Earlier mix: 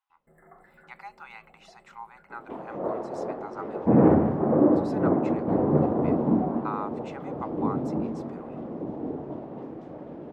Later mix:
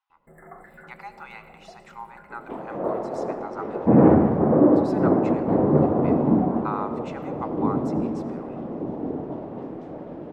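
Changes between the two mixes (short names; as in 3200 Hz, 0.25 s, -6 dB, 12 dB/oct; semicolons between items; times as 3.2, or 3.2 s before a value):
first sound +7.0 dB; reverb: on, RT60 1.4 s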